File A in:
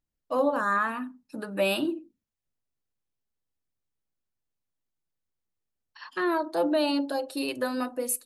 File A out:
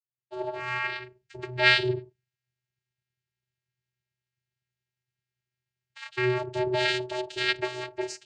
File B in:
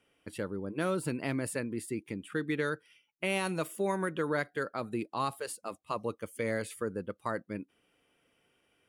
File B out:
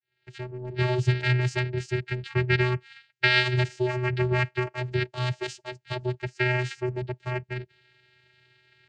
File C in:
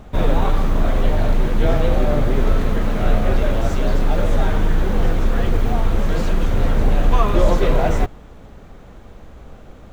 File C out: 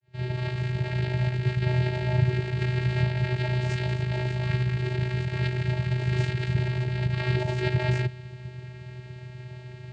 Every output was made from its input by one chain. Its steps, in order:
opening faded in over 0.90 s; dynamic EQ 2600 Hz, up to +4 dB, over -53 dBFS, Q 6.5; limiter -11 dBFS; AM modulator 200 Hz, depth 40%; soft clip -20 dBFS; resonant high shelf 1600 Hz +10.5 dB, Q 3; vocoder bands 8, square 125 Hz; match loudness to -27 LUFS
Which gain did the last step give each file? -2.0, +6.0, +5.0 dB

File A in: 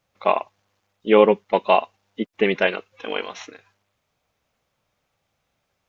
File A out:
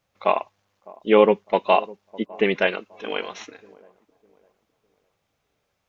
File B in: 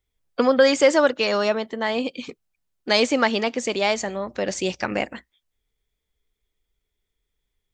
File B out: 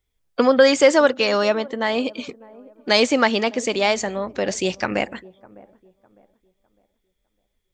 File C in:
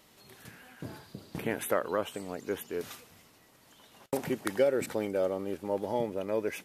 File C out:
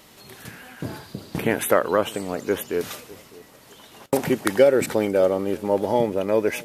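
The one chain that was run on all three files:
dark delay 0.605 s, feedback 31%, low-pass 890 Hz, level -21 dB; normalise peaks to -2 dBFS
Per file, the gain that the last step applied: -1.0, +2.5, +10.5 dB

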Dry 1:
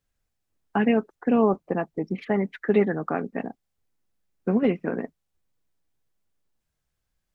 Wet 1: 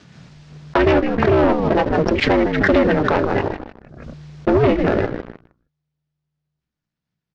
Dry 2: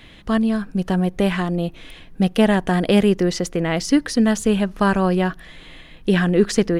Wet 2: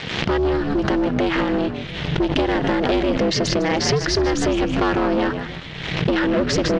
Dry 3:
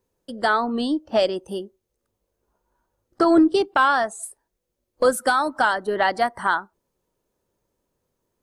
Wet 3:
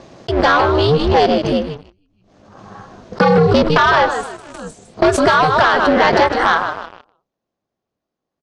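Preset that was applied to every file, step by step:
compressor 6:1, threshold -17 dBFS; ring modulator 150 Hz; HPF 120 Hz 6 dB/oct; on a send: frequency-shifting echo 0.155 s, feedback 39%, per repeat -83 Hz, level -11 dB; on the sum: sample leveller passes 3; LPF 5500 Hz 24 dB/oct; backwards sustainer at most 47 dB/s; normalise peaks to -3 dBFS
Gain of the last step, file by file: +5.0, -2.0, +4.5 dB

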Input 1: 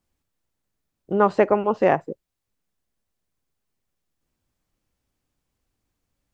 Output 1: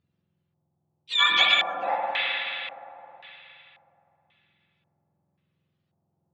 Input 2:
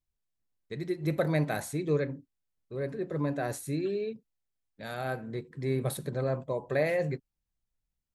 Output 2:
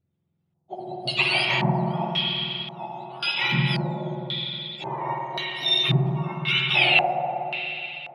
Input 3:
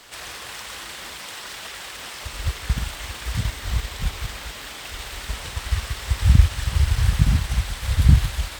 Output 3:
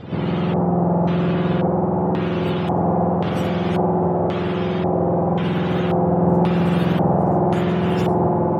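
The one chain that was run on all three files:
spectrum mirrored in octaves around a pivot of 1200 Hz; spring tank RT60 3.2 s, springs 52/60 ms, chirp 45 ms, DRR -2 dB; LFO low-pass square 0.93 Hz 810–3400 Hz; normalise peaks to -6 dBFS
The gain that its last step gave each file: -2.5, +7.0, +6.5 dB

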